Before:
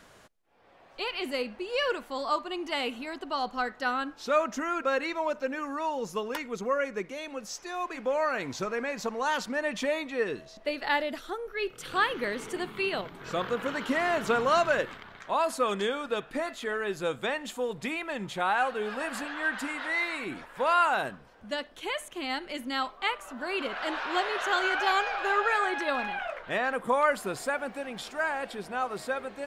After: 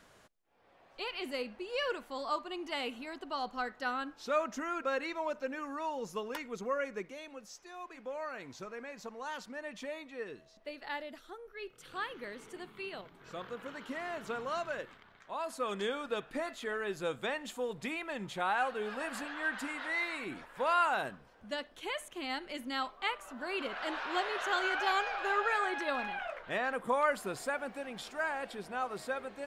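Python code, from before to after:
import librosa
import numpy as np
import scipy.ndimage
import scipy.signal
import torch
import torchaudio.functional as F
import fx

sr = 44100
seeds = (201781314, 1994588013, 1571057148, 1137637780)

y = fx.gain(x, sr, db=fx.line((6.96, -6.0), (7.59, -12.5), (15.3, -12.5), (15.9, -5.0)))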